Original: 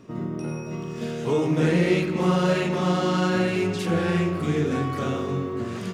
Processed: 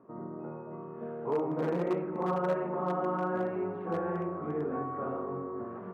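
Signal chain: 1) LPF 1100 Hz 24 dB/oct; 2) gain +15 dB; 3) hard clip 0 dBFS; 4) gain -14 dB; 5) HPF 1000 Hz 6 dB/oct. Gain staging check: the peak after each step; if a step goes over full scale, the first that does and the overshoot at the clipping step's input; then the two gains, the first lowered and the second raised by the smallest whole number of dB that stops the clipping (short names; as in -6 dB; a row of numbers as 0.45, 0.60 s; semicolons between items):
-10.5, +4.5, 0.0, -14.0, -18.5 dBFS; step 2, 4.5 dB; step 2 +10 dB, step 4 -9 dB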